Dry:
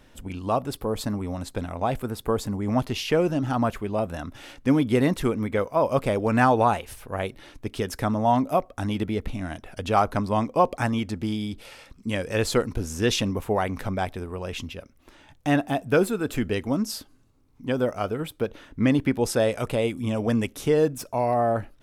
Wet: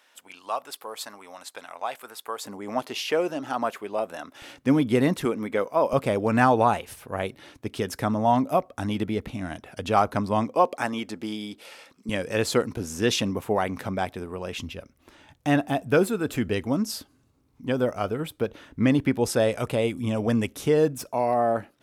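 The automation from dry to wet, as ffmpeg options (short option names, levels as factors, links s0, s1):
-af "asetnsamples=n=441:p=0,asendcmd='2.44 highpass f 400;4.42 highpass f 110;5.25 highpass f 230;5.93 highpass f 97;10.55 highpass f 280;12.09 highpass f 120;14.59 highpass f 53;21.08 highpass f 170',highpass=900"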